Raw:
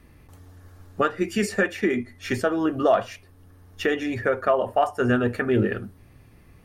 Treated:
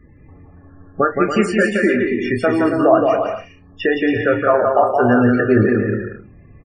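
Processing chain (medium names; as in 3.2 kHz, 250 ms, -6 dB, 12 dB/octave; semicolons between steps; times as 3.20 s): loudest bins only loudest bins 32; doubling 28 ms -8.5 dB; bouncing-ball echo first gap 170 ms, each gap 0.65×, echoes 5; trim +5.5 dB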